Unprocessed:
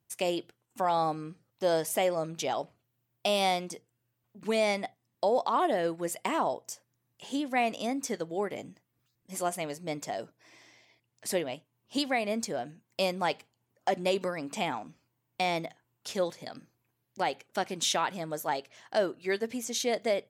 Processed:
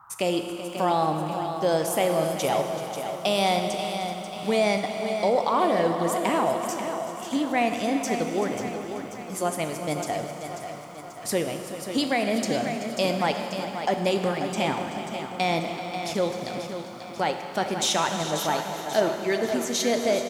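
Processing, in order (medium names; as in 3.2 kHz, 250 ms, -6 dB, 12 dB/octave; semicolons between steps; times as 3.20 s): bass shelf 140 Hz +11 dB; in parallel at -0.5 dB: level held to a coarse grid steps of 11 dB; on the sum: Schroeder reverb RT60 2.9 s, combs from 26 ms, DRR 6 dB; band noise 830–1400 Hz -51 dBFS; on a send: delay 381 ms -14 dB; on the sum: bit-crushed delay 538 ms, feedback 55%, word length 9-bit, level -9 dB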